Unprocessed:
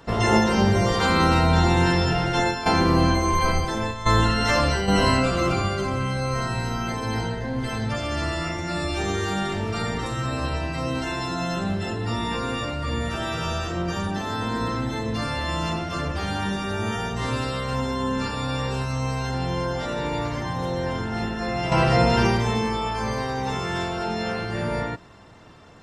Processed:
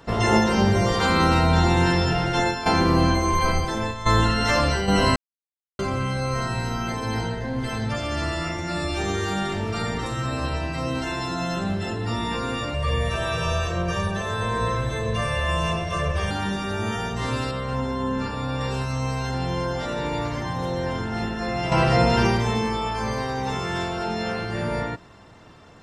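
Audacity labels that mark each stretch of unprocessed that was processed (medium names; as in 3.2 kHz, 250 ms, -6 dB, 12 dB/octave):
5.160000	5.790000	mute
12.740000	16.310000	comb 1.8 ms, depth 88%
17.510000	18.610000	treble shelf 2.8 kHz -8.5 dB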